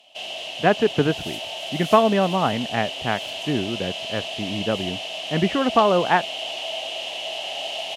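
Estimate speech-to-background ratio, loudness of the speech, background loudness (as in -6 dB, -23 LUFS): 6.5 dB, -22.5 LUFS, -29.0 LUFS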